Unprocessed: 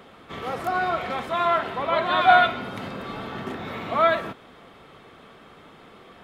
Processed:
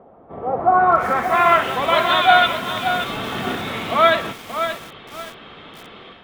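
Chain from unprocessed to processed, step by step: AGC gain up to 8 dB; low-pass sweep 720 Hz -> 3400 Hz, 0.53–1.75; lo-fi delay 0.577 s, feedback 35%, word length 5-bit, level -8 dB; gain -1.5 dB

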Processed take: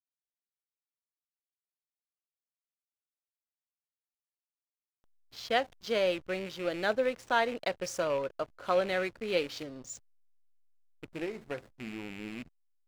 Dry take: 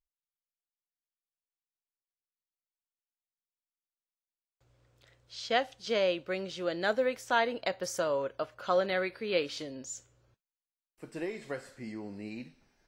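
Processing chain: rattling part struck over -43 dBFS, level -32 dBFS; backlash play -40.5 dBFS

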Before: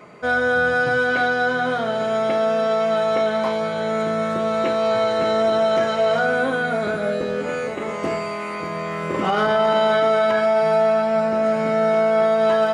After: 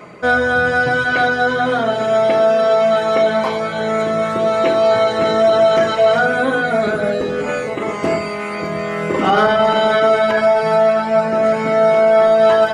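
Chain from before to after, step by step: reverb removal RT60 0.76 s; on a send: reverb RT60 0.45 s, pre-delay 47 ms, DRR 8 dB; on the sum: gain +6.5 dB

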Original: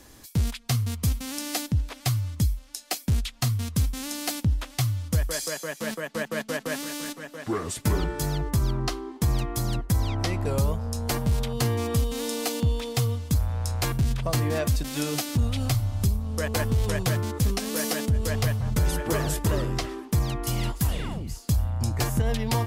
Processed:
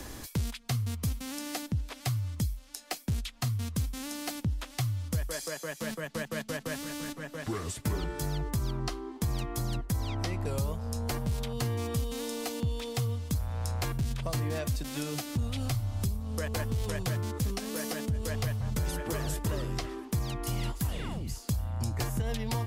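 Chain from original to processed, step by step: three-band squash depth 70%; gain -7 dB

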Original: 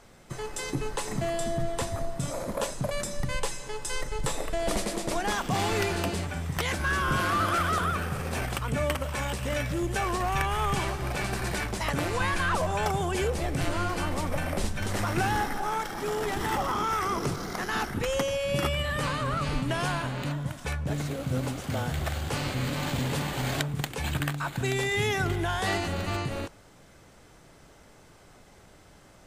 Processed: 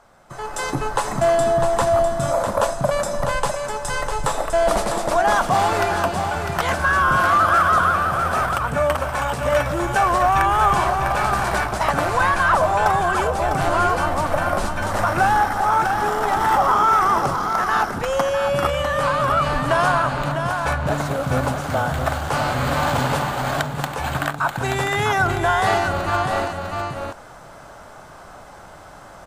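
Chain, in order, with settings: band shelf 950 Hz +10 dB; echo 0.651 s -6.5 dB; AGC; gain -4.5 dB

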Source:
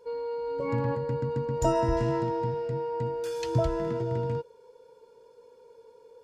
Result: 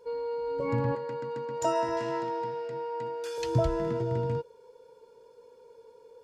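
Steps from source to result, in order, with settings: 0.95–3.38 weighting filter A

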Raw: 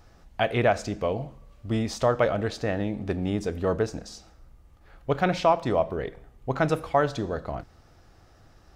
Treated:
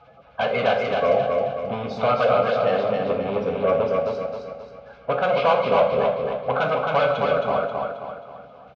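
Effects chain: bin magnitudes rounded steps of 30 dB; bell 1600 Hz +7 dB 0.95 oct; in parallel at -11 dB: sine folder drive 16 dB, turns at -6.5 dBFS; on the sum: speaker cabinet 230–2800 Hz, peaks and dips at 540 Hz +6 dB, 920 Hz -8 dB, 2100 Hz +9 dB; fixed phaser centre 790 Hz, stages 4; feedback echo 0.267 s, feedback 44%, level -3.5 dB; on a send at -4 dB: reverb, pre-delay 3 ms

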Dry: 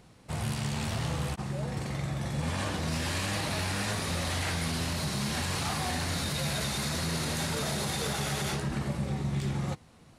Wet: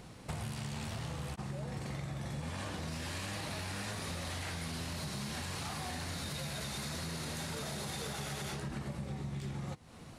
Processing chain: compressor 10:1, threshold -42 dBFS, peak gain reduction 15 dB; gain +5 dB

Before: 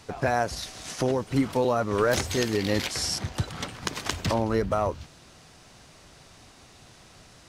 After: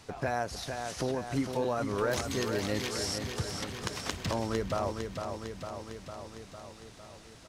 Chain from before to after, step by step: feedback echo 0.454 s, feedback 60%, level -7 dB; in parallel at -1.5 dB: compressor, threshold -35 dBFS, peak gain reduction 15.5 dB; on the sum: gain -8.5 dB

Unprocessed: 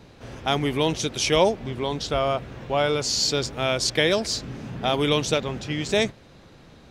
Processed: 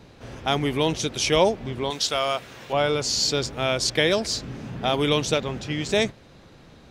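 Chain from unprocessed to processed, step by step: 1.9–2.73 tilt +3.5 dB/oct

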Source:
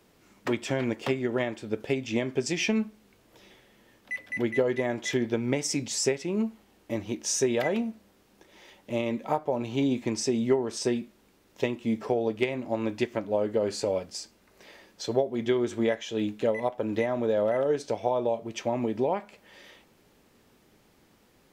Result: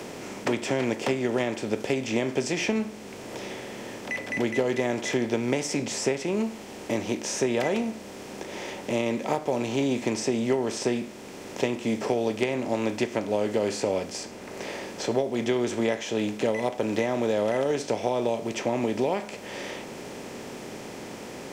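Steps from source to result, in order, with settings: per-bin compression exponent 0.6; requantised 12-bit, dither none; three-band squash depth 40%; gain -2.5 dB

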